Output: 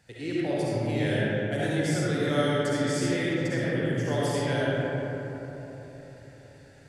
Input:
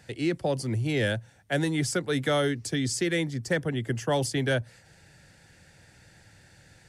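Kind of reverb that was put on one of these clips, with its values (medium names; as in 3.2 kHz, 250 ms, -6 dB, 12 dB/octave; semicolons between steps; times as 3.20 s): algorithmic reverb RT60 4 s, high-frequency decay 0.35×, pre-delay 25 ms, DRR -8.5 dB; trim -8.5 dB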